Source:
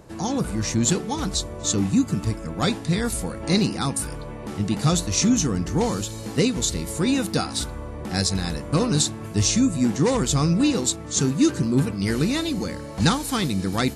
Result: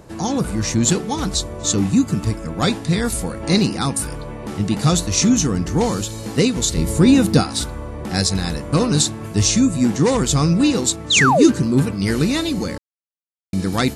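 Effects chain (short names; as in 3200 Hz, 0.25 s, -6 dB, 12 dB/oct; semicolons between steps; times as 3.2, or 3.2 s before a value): 6.77–7.43 low shelf 400 Hz +8.5 dB; 11.1–11.52 painted sound fall 210–4200 Hz -19 dBFS; 12.78–13.53 mute; gain +4 dB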